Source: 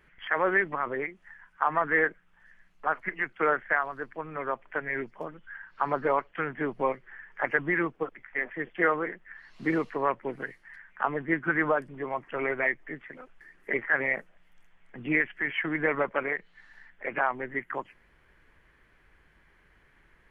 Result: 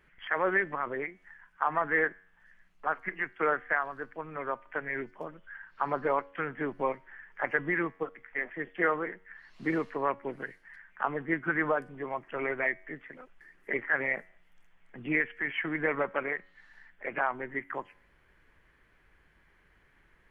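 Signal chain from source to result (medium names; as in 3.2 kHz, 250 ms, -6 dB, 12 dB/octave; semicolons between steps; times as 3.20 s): feedback comb 93 Hz, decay 0.6 s, harmonics all, mix 30%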